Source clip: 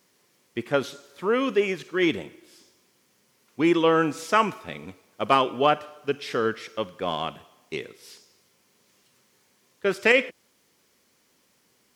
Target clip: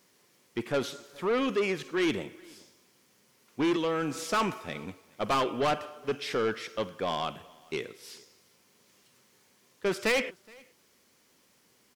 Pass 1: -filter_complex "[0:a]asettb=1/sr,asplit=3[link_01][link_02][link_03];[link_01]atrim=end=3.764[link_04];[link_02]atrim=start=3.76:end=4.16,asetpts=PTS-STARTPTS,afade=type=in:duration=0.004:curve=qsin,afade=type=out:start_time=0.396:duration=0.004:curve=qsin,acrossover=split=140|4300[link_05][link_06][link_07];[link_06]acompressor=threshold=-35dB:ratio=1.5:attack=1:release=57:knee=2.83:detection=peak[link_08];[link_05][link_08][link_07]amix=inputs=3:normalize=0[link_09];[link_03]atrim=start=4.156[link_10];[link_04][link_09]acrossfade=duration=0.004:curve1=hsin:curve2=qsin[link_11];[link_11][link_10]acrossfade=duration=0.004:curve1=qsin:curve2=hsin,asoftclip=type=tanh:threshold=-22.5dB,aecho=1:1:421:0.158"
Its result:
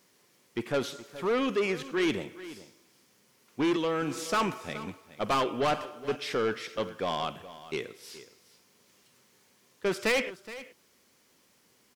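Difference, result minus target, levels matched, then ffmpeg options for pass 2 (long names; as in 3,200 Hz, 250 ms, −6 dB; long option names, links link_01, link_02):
echo-to-direct +10.5 dB
-filter_complex "[0:a]asettb=1/sr,asplit=3[link_01][link_02][link_03];[link_01]atrim=end=3.764[link_04];[link_02]atrim=start=3.76:end=4.16,asetpts=PTS-STARTPTS,afade=type=in:duration=0.004:curve=qsin,afade=type=out:start_time=0.396:duration=0.004:curve=qsin,acrossover=split=140|4300[link_05][link_06][link_07];[link_06]acompressor=threshold=-35dB:ratio=1.5:attack=1:release=57:knee=2.83:detection=peak[link_08];[link_05][link_08][link_07]amix=inputs=3:normalize=0[link_09];[link_03]atrim=start=4.156[link_10];[link_04][link_09]acrossfade=duration=0.004:curve1=hsin:curve2=qsin[link_11];[link_11][link_10]acrossfade=duration=0.004:curve1=qsin:curve2=hsin,asoftclip=type=tanh:threshold=-22.5dB,aecho=1:1:421:0.0473"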